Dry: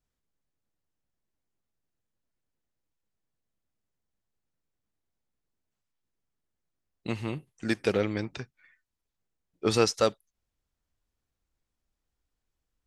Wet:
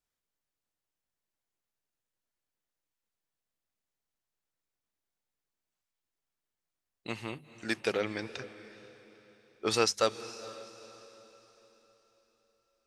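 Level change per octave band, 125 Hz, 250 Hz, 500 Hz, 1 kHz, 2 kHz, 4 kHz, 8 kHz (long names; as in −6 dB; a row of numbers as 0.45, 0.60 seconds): −10.0, −7.0, −4.0, −1.0, −0.5, 0.0, 0.0 decibels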